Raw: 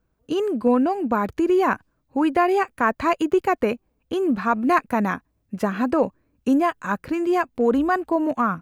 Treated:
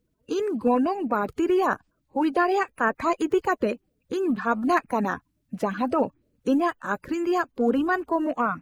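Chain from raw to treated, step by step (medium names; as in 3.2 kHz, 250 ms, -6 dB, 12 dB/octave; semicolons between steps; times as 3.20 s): coarse spectral quantiser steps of 30 dB; trim -2.5 dB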